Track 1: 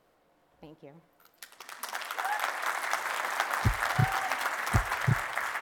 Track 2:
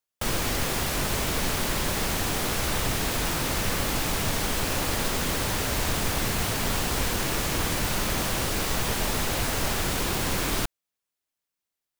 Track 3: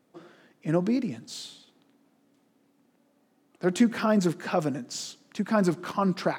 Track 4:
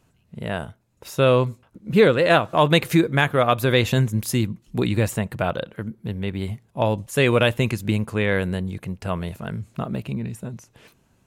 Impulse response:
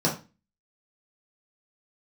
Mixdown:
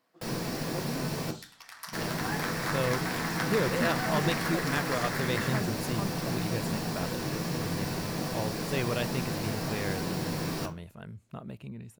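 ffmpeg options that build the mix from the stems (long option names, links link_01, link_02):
-filter_complex "[0:a]highpass=1100,volume=-5.5dB,asplit=2[link_01][link_02];[link_02]volume=-12dB[link_03];[1:a]volume=-15dB,asplit=3[link_04][link_05][link_06];[link_04]atrim=end=1.31,asetpts=PTS-STARTPTS,afade=type=out:start_time=1.306:duration=0.004:curve=hsin[link_07];[link_05]atrim=start=1.31:end=1.93,asetpts=PTS-STARTPTS,volume=0[link_08];[link_06]atrim=start=1.93,asetpts=PTS-STARTPTS,afade=type=in:duration=0.004:curve=hsin[link_09];[link_07][link_08][link_09]concat=n=3:v=0:a=1,asplit=2[link_10][link_11];[link_11]volume=-7.5dB[link_12];[2:a]volume=-13dB[link_13];[3:a]adelay=1550,volume=-14dB[link_14];[4:a]atrim=start_sample=2205[link_15];[link_03][link_12]amix=inputs=2:normalize=0[link_16];[link_16][link_15]afir=irnorm=-1:irlink=0[link_17];[link_01][link_10][link_13][link_14][link_17]amix=inputs=5:normalize=0"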